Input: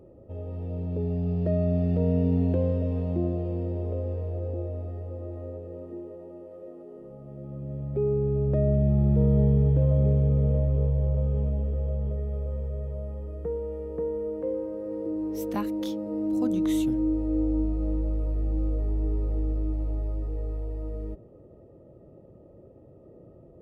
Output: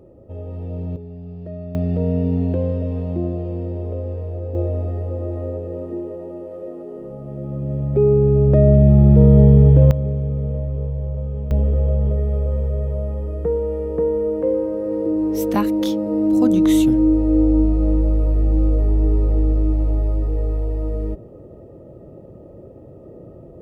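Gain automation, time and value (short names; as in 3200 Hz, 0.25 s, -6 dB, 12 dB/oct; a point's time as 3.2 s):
+4.5 dB
from 0.96 s -7 dB
from 1.75 s +4 dB
from 4.55 s +11 dB
from 9.91 s 0 dB
from 11.51 s +10.5 dB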